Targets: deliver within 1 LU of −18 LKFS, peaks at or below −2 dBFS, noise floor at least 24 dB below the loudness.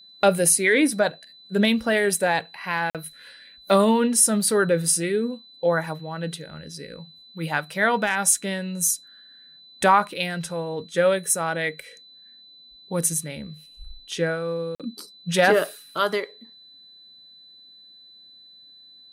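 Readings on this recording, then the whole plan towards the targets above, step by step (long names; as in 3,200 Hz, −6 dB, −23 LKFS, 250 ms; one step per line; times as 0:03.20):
number of dropouts 2; longest dropout 47 ms; interfering tone 4,000 Hz; level of the tone −47 dBFS; integrated loudness −22.5 LKFS; sample peak −5.5 dBFS; target loudness −18.0 LKFS
→ repair the gap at 0:02.90/0:14.75, 47 ms
notch filter 4,000 Hz, Q 30
level +4.5 dB
brickwall limiter −2 dBFS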